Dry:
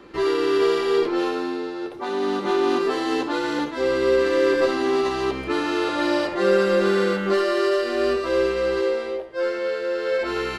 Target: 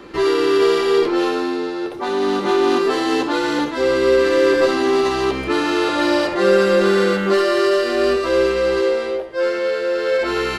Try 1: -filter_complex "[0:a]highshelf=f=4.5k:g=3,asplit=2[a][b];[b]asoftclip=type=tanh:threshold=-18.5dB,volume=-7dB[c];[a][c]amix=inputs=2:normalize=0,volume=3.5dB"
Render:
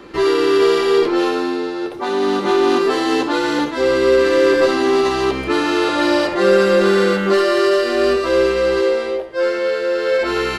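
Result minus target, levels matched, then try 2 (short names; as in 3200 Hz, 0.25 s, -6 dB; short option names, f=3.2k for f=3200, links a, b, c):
soft clip: distortion -8 dB
-filter_complex "[0:a]highshelf=f=4.5k:g=3,asplit=2[a][b];[b]asoftclip=type=tanh:threshold=-30dB,volume=-7dB[c];[a][c]amix=inputs=2:normalize=0,volume=3.5dB"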